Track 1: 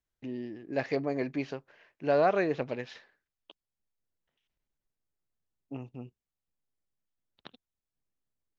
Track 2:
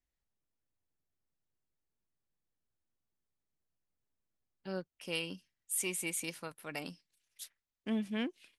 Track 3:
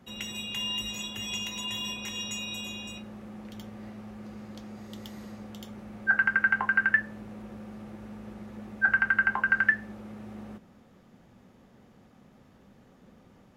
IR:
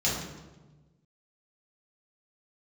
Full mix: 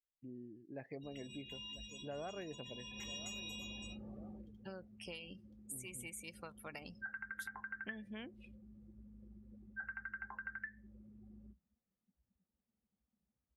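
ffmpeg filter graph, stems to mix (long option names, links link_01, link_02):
-filter_complex "[0:a]bass=frequency=250:gain=6,treble=frequency=4000:gain=-1,volume=-14dB,asplit=2[link_01][link_02];[link_02]volume=-16dB[link_03];[1:a]equalizer=frequency=270:width_type=o:width=1.5:gain=-6,acompressor=threshold=-43dB:ratio=8,volume=2.5dB[link_04];[2:a]equalizer=frequency=60:width=3:gain=14,adelay=950,volume=-5.5dB,afade=type=in:start_time=2.84:duration=0.25:silence=0.354813,afade=type=out:start_time=4.27:duration=0.25:silence=0.316228[link_05];[link_03]aecho=0:1:995|1990|2985|3980|4975:1|0.34|0.116|0.0393|0.0134[link_06];[link_01][link_04][link_05][link_06]amix=inputs=4:normalize=0,afftdn=noise_reduction=23:noise_floor=-52,acompressor=threshold=-47dB:ratio=2"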